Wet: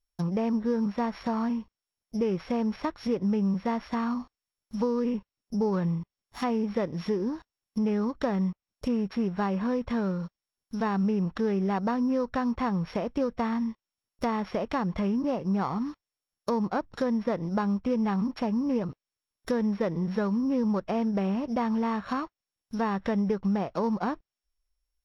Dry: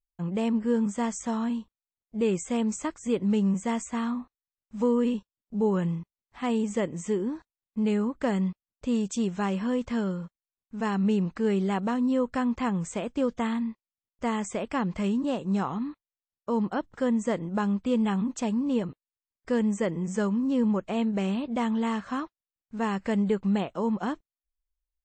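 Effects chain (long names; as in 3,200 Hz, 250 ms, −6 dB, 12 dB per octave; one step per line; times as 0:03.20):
samples sorted by size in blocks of 8 samples
dynamic equaliser 280 Hz, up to −5 dB, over −37 dBFS, Q 0.79
downward compressor, threshold −28 dBFS, peak gain reduction 6 dB
treble cut that deepens with the level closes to 1,800 Hz, closed at −31 dBFS
floating-point word with a short mantissa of 8 bits
level +5.5 dB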